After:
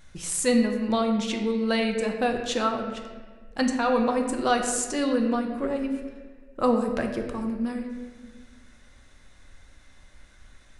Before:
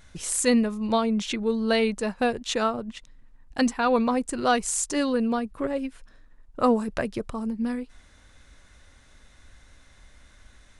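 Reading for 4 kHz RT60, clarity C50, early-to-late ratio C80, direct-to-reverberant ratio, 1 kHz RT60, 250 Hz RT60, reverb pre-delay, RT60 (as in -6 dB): 1.0 s, 5.5 dB, 7.0 dB, 3.0 dB, 1.3 s, 1.9 s, 4 ms, 1.5 s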